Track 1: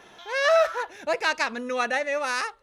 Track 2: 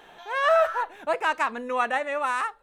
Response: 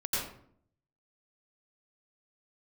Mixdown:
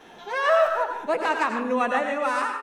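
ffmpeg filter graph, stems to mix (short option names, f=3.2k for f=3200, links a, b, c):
-filter_complex "[0:a]volume=-4dB,asplit=2[a][b];[b]volume=-21.5dB[c];[1:a]equalizer=f=250:w=0.73:g=9.5,adelay=9.9,volume=-4dB,asplit=3[d][e][f];[e]volume=-7.5dB[g];[f]apad=whole_len=115710[h];[a][h]sidechaincompress=threshold=-33dB:ratio=8:attack=16:release=915[i];[2:a]atrim=start_sample=2205[j];[c][g]amix=inputs=2:normalize=0[k];[k][j]afir=irnorm=-1:irlink=0[l];[i][d][l]amix=inputs=3:normalize=0"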